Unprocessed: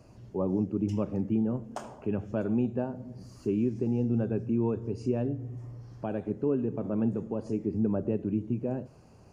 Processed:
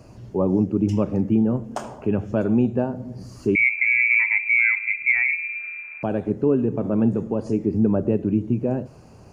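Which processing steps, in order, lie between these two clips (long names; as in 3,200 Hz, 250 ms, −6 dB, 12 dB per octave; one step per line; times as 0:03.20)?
0:03.55–0:06.03: voice inversion scrambler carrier 2,500 Hz
level +8.5 dB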